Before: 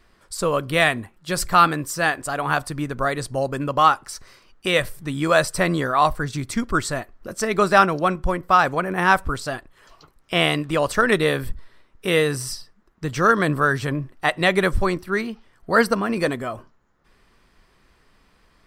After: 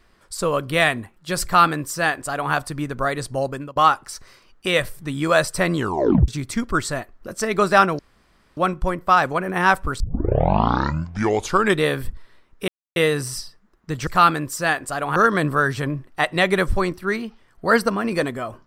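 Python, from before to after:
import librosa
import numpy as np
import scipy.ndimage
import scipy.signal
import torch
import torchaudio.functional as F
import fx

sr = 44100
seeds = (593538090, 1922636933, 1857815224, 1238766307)

y = fx.edit(x, sr, fx.duplicate(start_s=1.44, length_s=1.09, to_s=13.21),
    fx.fade_out_to(start_s=3.46, length_s=0.3, floor_db=-23.5),
    fx.tape_stop(start_s=5.76, length_s=0.52),
    fx.insert_room_tone(at_s=7.99, length_s=0.58),
    fx.tape_start(start_s=9.42, length_s=1.82),
    fx.insert_silence(at_s=12.1, length_s=0.28), tone=tone)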